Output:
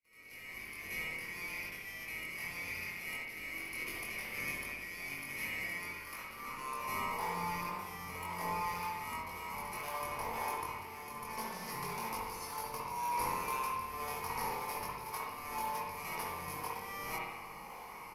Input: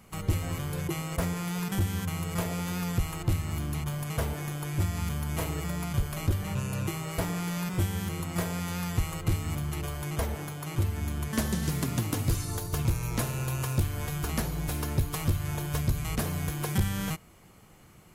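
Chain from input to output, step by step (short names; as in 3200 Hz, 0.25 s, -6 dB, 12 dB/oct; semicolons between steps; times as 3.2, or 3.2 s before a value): opening faded in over 3.35 s; ripple EQ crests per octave 0.85, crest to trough 14 dB; reverse; compressor 6:1, threshold -39 dBFS, peak gain reduction 20.5 dB; reverse; reverse echo 79 ms -9 dB; high-pass sweep 2100 Hz -> 820 Hz, 5.52–7.06; low shelf 280 Hz +12 dB; in parallel at -11 dB: decimation with a swept rate 34×, swing 100% 1.9 Hz; on the sum: doubler 22 ms -2.5 dB; spring tank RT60 1 s, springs 58 ms, chirp 45 ms, DRR -2 dB; gain -1 dB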